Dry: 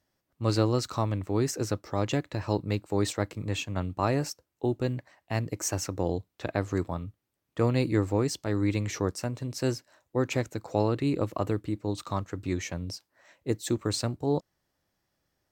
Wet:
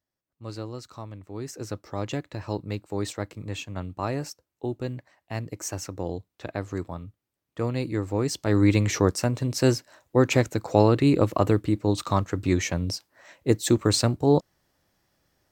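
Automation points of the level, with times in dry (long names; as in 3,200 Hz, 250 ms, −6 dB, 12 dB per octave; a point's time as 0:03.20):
0:01.25 −11 dB
0:01.80 −2.5 dB
0:08.03 −2.5 dB
0:08.57 +7.5 dB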